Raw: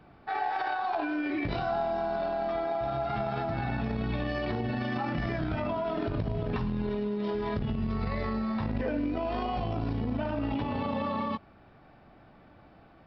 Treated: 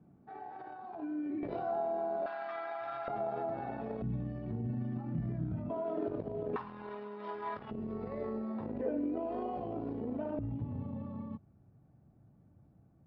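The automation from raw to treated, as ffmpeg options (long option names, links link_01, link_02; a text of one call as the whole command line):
ffmpeg -i in.wav -af "asetnsamples=nb_out_samples=441:pad=0,asendcmd='1.43 bandpass f 470;2.26 bandpass f 1600;3.08 bandpass f 520;4.02 bandpass f 150;5.7 bandpass f 440;6.56 bandpass f 1100;7.71 bandpass f 410;10.39 bandpass f 120',bandpass=frequency=190:width_type=q:width=1.6:csg=0" out.wav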